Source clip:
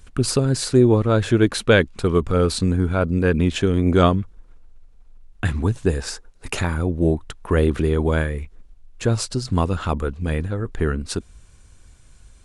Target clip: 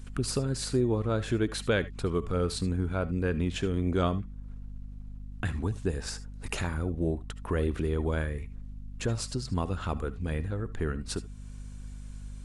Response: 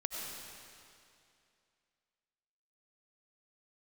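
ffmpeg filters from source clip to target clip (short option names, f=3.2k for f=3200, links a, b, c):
-filter_complex "[0:a]acompressor=threshold=-40dB:ratio=1.5,aeval=exprs='val(0)+0.00891*(sin(2*PI*50*n/s)+sin(2*PI*2*50*n/s)/2+sin(2*PI*3*50*n/s)/3+sin(2*PI*4*50*n/s)/4+sin(2*PI*5*50*n/s)/5)':c=same[a];[1:a]atrim=start_sample=2205,atrim=end_sample=3528[b];[a][b]afir=irnorm=-1:irlink=0"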